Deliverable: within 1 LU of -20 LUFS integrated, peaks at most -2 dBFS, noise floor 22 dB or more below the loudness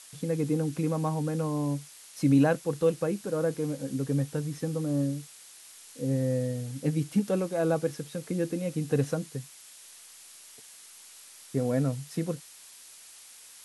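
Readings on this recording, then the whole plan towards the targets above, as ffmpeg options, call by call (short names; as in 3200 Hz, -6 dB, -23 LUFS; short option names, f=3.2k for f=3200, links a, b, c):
noise floor -51 dBFS; noise floor target -52 dBFS; loudness -29.5 LUFS; peak -12.0 dBFS; loudness target -20.0 LUFS
-> -af "afftdn=nr=6:nf=-51"
-af "volume=9.5dB"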